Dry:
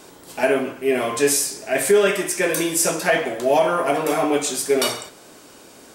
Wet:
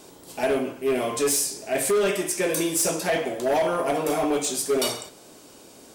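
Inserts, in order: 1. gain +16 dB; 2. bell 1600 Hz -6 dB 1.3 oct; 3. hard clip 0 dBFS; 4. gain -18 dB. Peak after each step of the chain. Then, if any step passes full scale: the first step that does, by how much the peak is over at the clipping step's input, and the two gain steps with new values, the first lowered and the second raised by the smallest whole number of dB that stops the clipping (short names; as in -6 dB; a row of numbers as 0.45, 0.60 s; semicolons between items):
+9.5, +9.5, 0.0, -18.0 dBFS; step 1, 9.5 dB; step 1 +6 dB, step 4 -8 dB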